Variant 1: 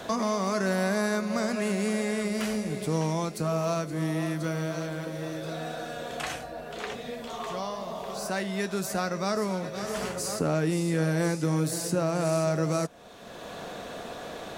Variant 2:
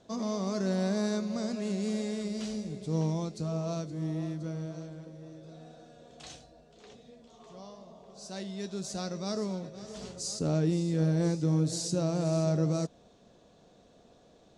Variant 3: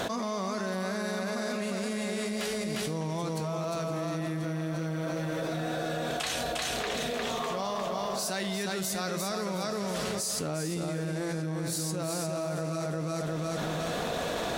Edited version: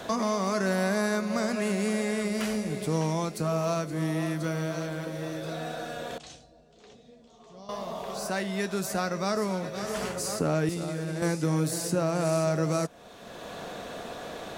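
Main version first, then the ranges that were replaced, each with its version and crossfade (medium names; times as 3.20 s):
1
6.18–7.69 s: from 2
10.69–11.22 s: from 3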